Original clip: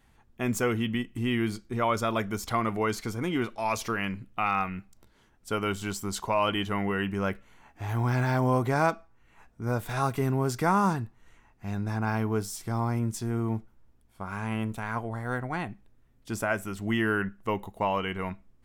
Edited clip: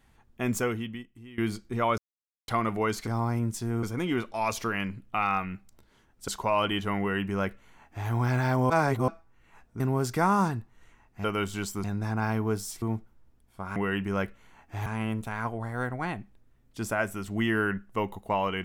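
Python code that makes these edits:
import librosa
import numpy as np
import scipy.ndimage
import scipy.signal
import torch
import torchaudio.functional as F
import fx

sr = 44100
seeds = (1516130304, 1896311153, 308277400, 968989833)

y = fx.edit(x, sr, fx.fade_out_to(start_s=0.57, length_s=0.81, curve='qua', floor_db=-20.5),
    fx.silence(start_s=1.98, length_s=0.5),
    fx.move(start_s=5.52, length_s=0.6, to_s=11.69),
    fx.duplicate(start_s=6.83, length_s=1.1, to_s=14.37),
    fx.reverse_span(start_s=8.54, length_s=0.38),
    fx.cut(start_s=9.64, length_s=0.61),
    fx.move(start_s=12.67, length_s=0.76, to_s=3.07), tone=tone)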